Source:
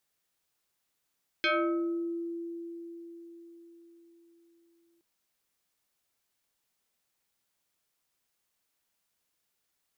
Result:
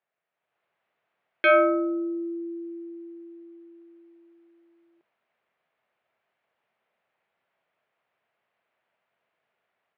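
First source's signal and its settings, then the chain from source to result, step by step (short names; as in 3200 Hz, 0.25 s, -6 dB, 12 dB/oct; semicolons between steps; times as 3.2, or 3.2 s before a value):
FM tone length 3.57 s, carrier 338 Hz, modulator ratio 2.8, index 3.7, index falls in 0.91 s exponential, decay 4.84 s, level -23 dB
AGC gain up to 9 dB; speaker cabinet 170–2500 Hz, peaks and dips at 190 Hz -4 dB, 290 Hz -10 dB, 650 Hz +7 dB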